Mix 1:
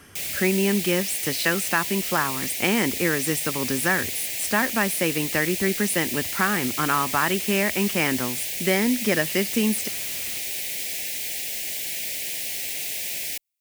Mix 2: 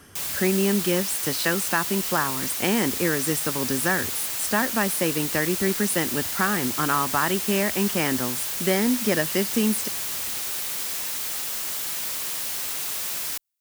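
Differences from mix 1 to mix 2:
background: remove Chebyshev band-stop 690–2000 Hz, order 2; master: add peaking EQ 2.3 kHz -5.5 dB 0.63 oct

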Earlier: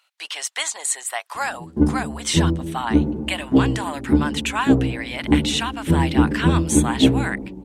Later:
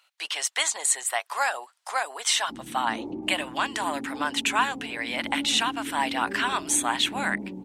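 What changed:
first sound: muted; master: add high-pass 150 Hz 12 dB/octave

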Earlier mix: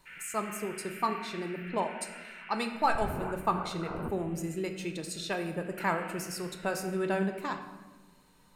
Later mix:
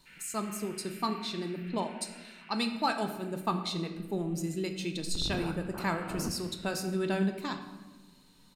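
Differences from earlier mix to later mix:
first sound -6.0 dB; second sound: entry +2.20 s; master: add ten-band graphic EQ 250 Hz +5 dB, 500 Hz -4 dB, 1 kHz -3 dB, 2 kHz -3 dB, 4 kHz +8 dB

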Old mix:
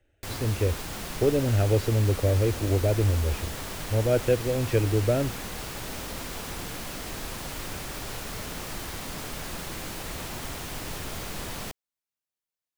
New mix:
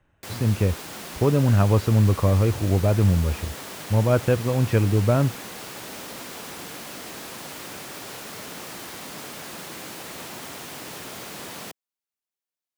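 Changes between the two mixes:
speech: remove static phaser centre 430 Hz, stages 4; background: add high-pass 180 Hz 12 dB/octave

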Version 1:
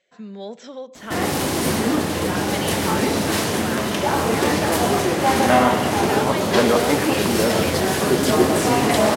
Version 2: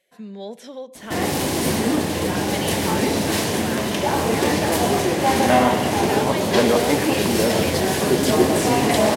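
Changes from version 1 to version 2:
speech: remove brick-wall FIR low-pass 8 kHz; master: add peaking EQ 1.3 kHz -6.5 dB 0.41 oct

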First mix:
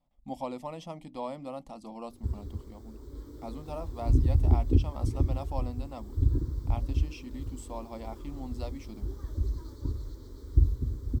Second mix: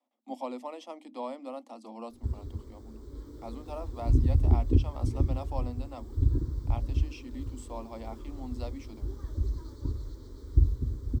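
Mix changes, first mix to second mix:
speech: add Chebyshev high-pass 220 Hz, order 10; master: add peaking EQ 14 kHz -5 dB 0.72 oct

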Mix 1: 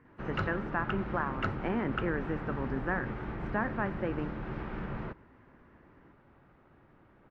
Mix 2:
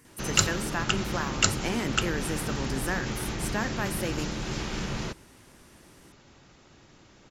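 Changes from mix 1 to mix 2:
speech -4.0 dB; master: remove four-pole ladder low-pass 2.1 kHz, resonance 20%

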